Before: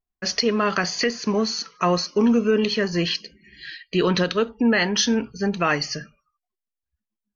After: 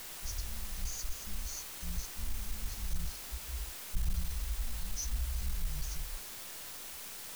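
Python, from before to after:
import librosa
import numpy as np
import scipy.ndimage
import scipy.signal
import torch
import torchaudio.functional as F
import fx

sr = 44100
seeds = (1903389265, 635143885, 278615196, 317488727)

p1 = scipy.signal.sosfilt(scipy.signal.cheby2(4, 70, [260.0, 3100.0], 'bandstop', fs=sr, output='sos'), x)
p2 = fx.hpss(p1, sr, part='percussive', gain_db=-4)
p3 = fx.low_shelf(p2, sr, hz=97.0, db=11.0)
p4 = fx.level_steps(p3, sr, step_db=21)
p5 = p3 + (p4 * 10.0 ** (-2.0 / 20.0))
p6 = fx.quant_dither(p5, sr, seeds[0], bits=10, dither='triangular')
p7 = fx.leveller(p6, sr, passes=2)
y = p7 * 10.0 ** (7.0 / 20.0)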